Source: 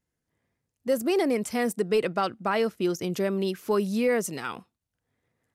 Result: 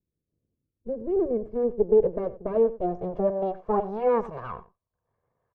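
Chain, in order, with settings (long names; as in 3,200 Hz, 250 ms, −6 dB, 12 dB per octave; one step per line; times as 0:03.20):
lower of the sound and its delayed copy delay 1.8 ms
low-pass filter sweep 290 Hz → 1,000 Hz, 0:00.79–0:04.36
single-tap delay 91 ms −17 dB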